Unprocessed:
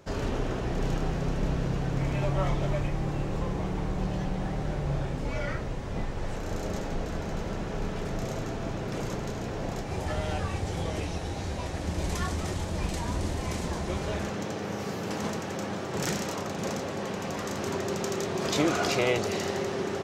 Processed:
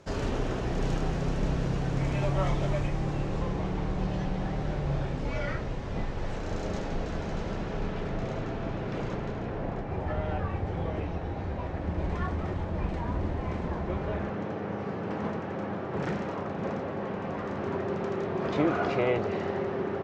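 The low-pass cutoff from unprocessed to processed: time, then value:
2.79 s 9 kHz
3.64 s 5.4 kHz
7.49 s 5.4 kHz
8.15 s 3.2 kHz
9.02 s 3.2 kHz
9.81 s 1.8 kHz

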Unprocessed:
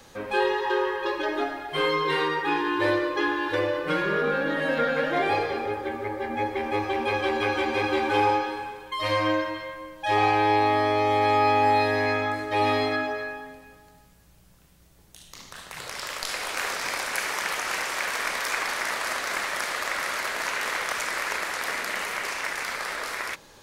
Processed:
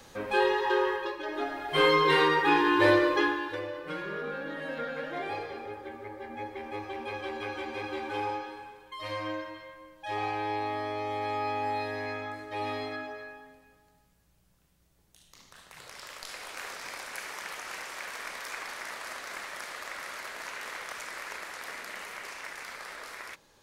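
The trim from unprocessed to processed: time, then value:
0.94 s -1.5 dB
1.17 s -10 dB
1.80 s +2 dB
3.13 s +2 dB
3.60 s -11 dB

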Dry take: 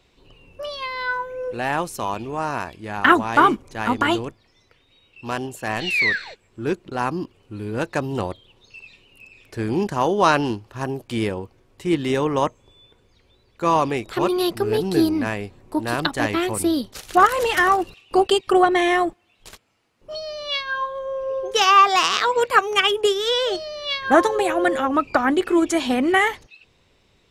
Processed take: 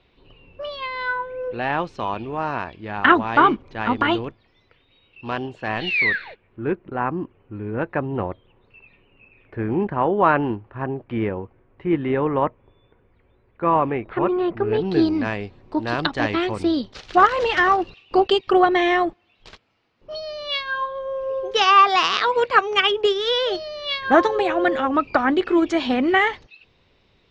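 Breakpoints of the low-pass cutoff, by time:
low-pass 24 dB/octave
5.97 s 3.9 kHz
6.78 s 2.2 kHz
14.53 s 2.2 kHz
15.10 s 4.9 kHz

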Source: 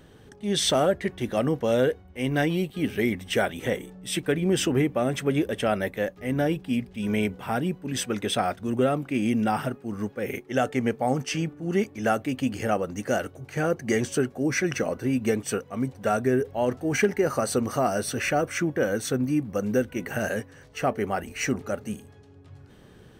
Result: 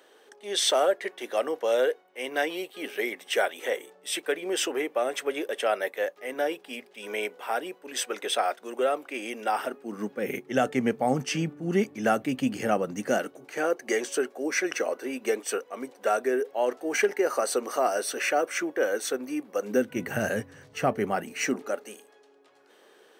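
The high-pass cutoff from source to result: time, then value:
high-pass 24 dB/octave
9.50 s 410 Hz
10.37 s 140 Hz
12.97 s 140 Hz
13.71 s 350 Hz
19.62 s 350 Hz
20.03 s 93 Hz
20.89 s 93 Hz
21.91 s 390 Hz

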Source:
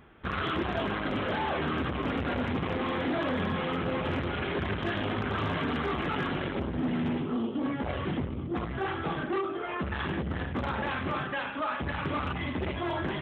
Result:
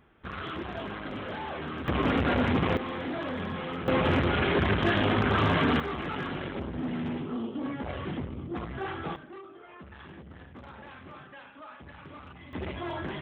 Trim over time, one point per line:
-6 dB
from 1.88 s +5 dB
from 2.77 s -4 dB
from 3.88 s +6 dB
from 5.80 s -3 dB
from 9.16 s -15 dB
from 12.53 s -3.5 dB

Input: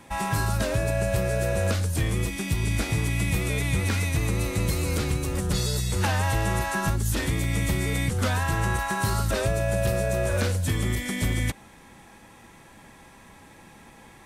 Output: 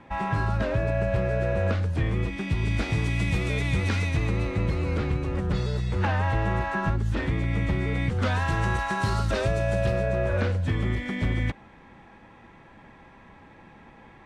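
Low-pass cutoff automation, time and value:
2.21 s 2.4 kHz
3.05 s 4.7 kHz
3.99 s 4.7 kHz
4.61 s 2.3 kHz
7.95 s 2.3 kHz
8.45 s 4.8 kHz
9.73 s 4.8 kHz
10.13 s 2.5 kHz

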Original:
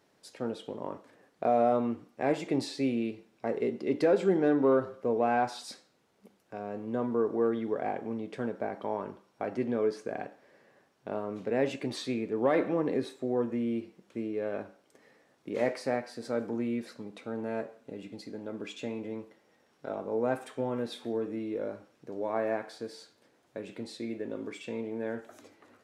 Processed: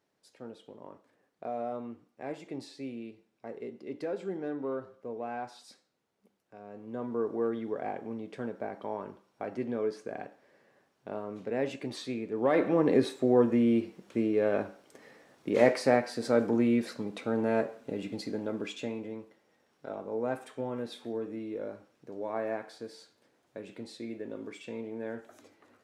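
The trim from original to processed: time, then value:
6.55 s -10.5 dB
7.23 s -3 dB
12.27 s -3 dB
12.98 s +6.5 dB
18.33 s +6.5 dB
19.20 s -3 dB

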